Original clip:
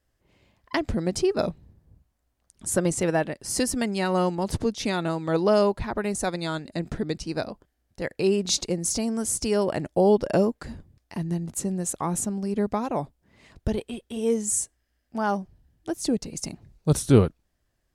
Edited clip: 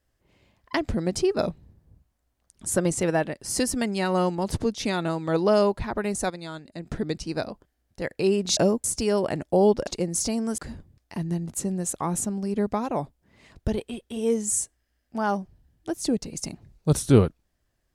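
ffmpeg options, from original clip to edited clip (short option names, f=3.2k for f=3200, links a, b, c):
-filter_complex "[0:a]asplit=7[a][b][c][d][e][f][g];[a]atrim=end=6.302[h];[b]atrim=start=6.298:end=6.902,asetpts=PTS-STARTPTS,volume=-7.5dB[i];[c]atrim=start=6.898:end=8.572[j];[d]atrim=start=10.308:end=10.582[k];[e]atrim=start=9.278:end=10.312[l];[f]atrim=start=8.568:end=9.282[m];[g]atrim=start=10.578[n];[h][i]acrossfade=d=0.004:c1=hsin:c2=hsin[o];[o][j]acrossfade=d=0.004:c1=hsin:c2=hsin[p];[p][k]acrossfade=d=0.004:c1=hsin:c2=hsin[q];[q][l]acrossfade=d=0.004:c1=hsin:c2=hsin[r];[r][m]acrossfade=d=0.004:c1=hsin:c2=hsin[s];[s][n]acrossfade=d=0.004:c1=hsin:c2=hsin"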